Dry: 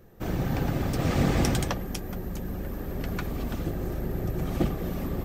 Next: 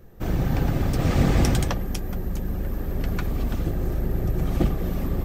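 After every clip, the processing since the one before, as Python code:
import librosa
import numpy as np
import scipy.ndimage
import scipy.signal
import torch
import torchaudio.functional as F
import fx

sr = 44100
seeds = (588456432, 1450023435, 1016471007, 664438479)

y = fx.low_shelf(x, sr, hz=80.0, db=9.0)
y = y * 10.0 ** (1.5 / 20.0)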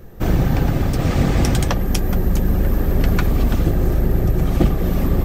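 y = fx.rider(x, sr, range_db=4, speed_s=0.5)
y = y * 10.0 ** (6.5 / 20.0)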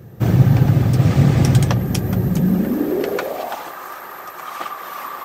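y = fx.filter_sweep_highpass(x, sr, from_hz=120.0, to_hz=1100.0, start_s=2.22, end_s=3.76, q=3.9)
y = y * 10.0 ** (-1.0 / 20.0)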